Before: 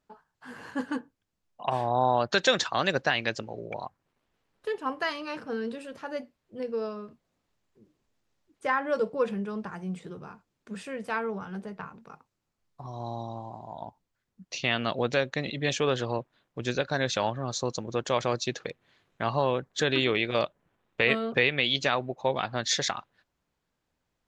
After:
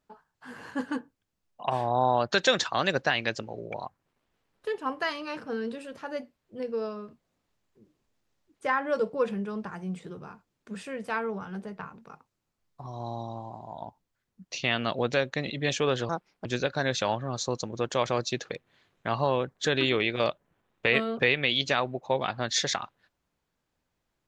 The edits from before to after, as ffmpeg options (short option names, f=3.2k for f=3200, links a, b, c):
-filter_complex "[0:a]asplit=3[a][b][c];[a]atrim=end=16.094[d];[b]atrim=start=16.09:end=16.6,asetpts=PTS-STARTPTS,asetrate=62181,aresample=44100,atrim=end_sample=15951,asetpts=PTS-STARTPTS[e];[c]atrim=start=16.596[f];[d][e]acrossfade=d=0.004:c1=hsin:c2=hsin[g];[g][f]acrossfade=d=0.004:c1=hsin:c2=hsin"